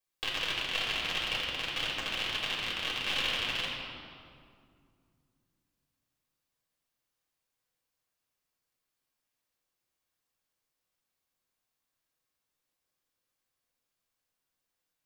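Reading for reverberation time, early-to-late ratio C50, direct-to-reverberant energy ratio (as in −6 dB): 2.2 s, 0.5 dB, −4.5 dB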